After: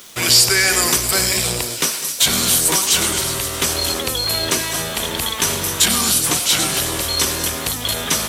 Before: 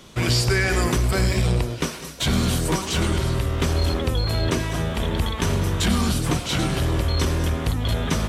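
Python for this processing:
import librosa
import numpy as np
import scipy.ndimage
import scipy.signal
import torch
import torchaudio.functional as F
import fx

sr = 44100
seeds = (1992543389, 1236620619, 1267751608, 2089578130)

y = fx.riaa(x, sr, side='recording')
y = fx.echo_wet_highpass(y, sr, ms=264, feedback_pct=66, hz=4000.0, wet_db=-10.0)
y = np.where(np.abs(y) >= 10.0 ** (-41.0 / 20.0), y, 0.0)
y = y * 10.0 ** (4.0 / 20.0)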